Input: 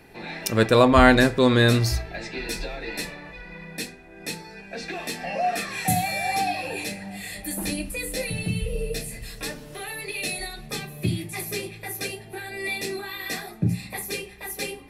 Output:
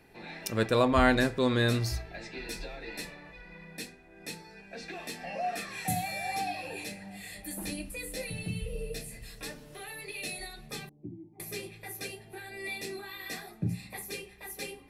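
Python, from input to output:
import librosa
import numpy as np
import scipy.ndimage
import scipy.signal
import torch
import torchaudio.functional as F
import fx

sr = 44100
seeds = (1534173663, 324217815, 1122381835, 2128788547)

y = fx.formant_cascade(x, sr, vowel='u', at=(10.89, 11.4))
y = F.gain(torch.from_numpy(y), -8.5).numpy()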